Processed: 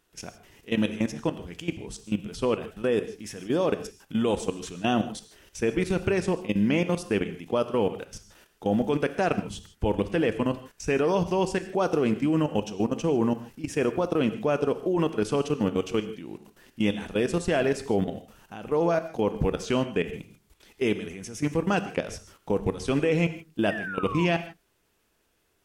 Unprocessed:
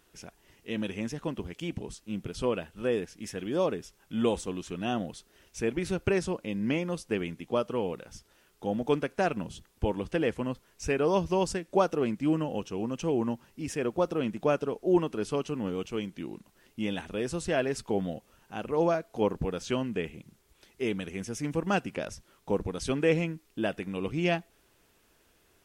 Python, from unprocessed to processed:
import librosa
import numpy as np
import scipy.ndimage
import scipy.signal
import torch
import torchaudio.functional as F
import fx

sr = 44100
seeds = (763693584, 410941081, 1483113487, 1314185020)

y = fx.level_steps(x, sr, step_db=16)
y = fx.spec_paint(y, sr, seeds[0], shape='fall', start_s=23.7, length_s=0.56, low_hz=920.0, high_hz=1900.0, level_db=-44.0)
y = fx.rev_gated(y, sr, seeds[1], gate_ms=180, shape='flat', drr_db=10.5)
y = F.gain(torch.from_numpy(y), 9.0).numpy()